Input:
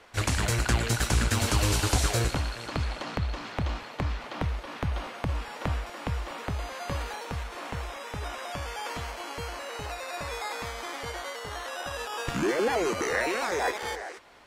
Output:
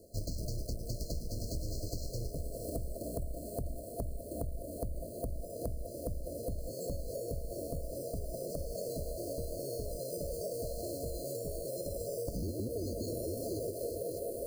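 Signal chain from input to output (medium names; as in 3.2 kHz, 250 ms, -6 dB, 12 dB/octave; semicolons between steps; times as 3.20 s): octave divider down 2 oct, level 0 dB; reverse; upward compressor, threshold -30 dBFS; reverse; formant shift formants -6 st; feedback echo behind a band-pass 204 ms, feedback 80%, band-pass 960 Hz, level -3 dB; careless resampling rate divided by 4×, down filtered, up hold; FFT band-reject 690–4100 Hz; compression 8:1, threshold -34 dBFS, peak gain reduction 17 dB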